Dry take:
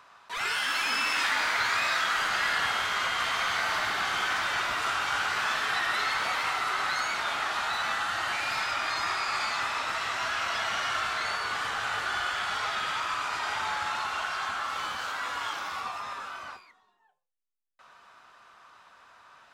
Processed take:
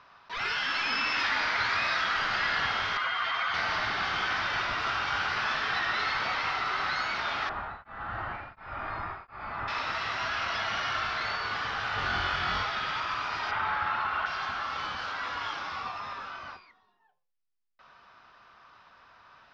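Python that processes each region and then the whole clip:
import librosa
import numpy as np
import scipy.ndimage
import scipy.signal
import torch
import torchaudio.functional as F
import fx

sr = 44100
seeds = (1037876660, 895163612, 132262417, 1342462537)

y = fx.chain(x, sr, fx.spec_expand(power=1.5),
    fx.highpass(hz=99.0, slope=12),
    fx.peak_eq(hz=160.0, db=-4.0, octaves=1.2), at=(2.97, 3.54))
y = fx.chain(y, sr, fx.lowpass(hz=1300.0, slope=12),
    fx.low_shelf(hz=99.0, db=10.5),
    fx.tremolo_abs(hz=1.4), at=(7.49, 9.68))
y = fx.chain(y, sr, fx.low_shelf(hz=280.0, db=8.5),
    fx.room_flutter(wall_m=3.8, rt60_s=0.32), at=(11.96, 12.63))
y = fx.chain(y, sr, fx.lowpass(hz=2900.0, slope=12),
    fx.peak_eq(hz=1300.0, db=4.5, octaves=0.87), at=(13.51, 14.26))
y = scipy.signal.sosfilt(scipy.signal.ellip(4, 1.0, 80, 5400.0, 'lowpass', fs=sr, output='sos'), y)
y = fx.low_shelf(y, sr, hz=220.0, db=9.0)
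y = F.gain(torch.from_numpy(y), -1.0).numpy()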